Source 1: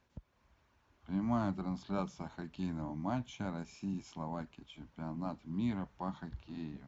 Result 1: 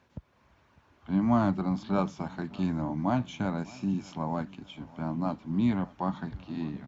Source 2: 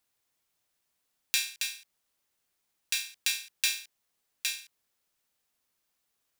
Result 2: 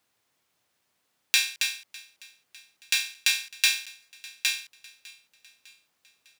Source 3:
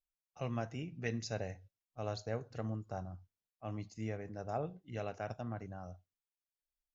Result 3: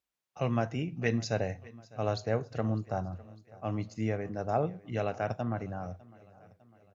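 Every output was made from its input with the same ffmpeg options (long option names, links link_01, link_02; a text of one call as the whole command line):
ffmpeg -i in.wav -filter_complex "[0:a]highpass=80,highshelf=frequency=5600:gain=-8.5,asplit=2[link_01][link_02];[link_02]aecho=0:1:603|1206|1809|2412:0.0794|0.0413|0.0215|0.0112[link_03];[link_01][link_03]amix=inputs=2:normalize=0,volume=9dB" out.wav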